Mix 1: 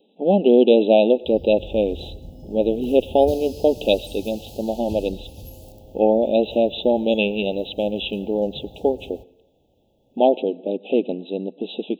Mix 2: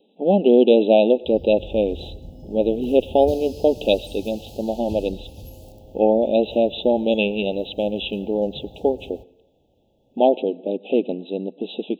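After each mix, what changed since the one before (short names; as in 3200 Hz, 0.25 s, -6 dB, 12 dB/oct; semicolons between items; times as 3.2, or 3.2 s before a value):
master: add high shelf 7400 Hz -5 dB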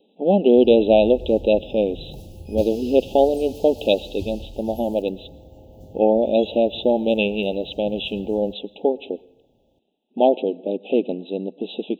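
background: entry -0.70 s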